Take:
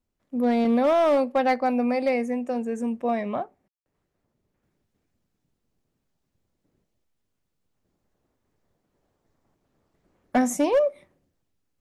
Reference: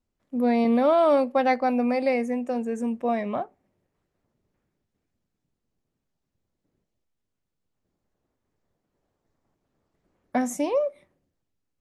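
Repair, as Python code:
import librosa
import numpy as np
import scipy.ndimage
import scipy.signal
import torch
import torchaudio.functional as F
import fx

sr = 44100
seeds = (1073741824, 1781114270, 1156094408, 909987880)

y = fx.fix_declip(x, sr, threshold_db=-15.0)
y = fx.fix_ambience(y, sr, seeds[0], print_start_s=7.15, print_end_s=7.65, start_s=3.68, end_s=3.86)
y = fx.fix_level(y, sr, at_s=4.63, step_db=-4.0)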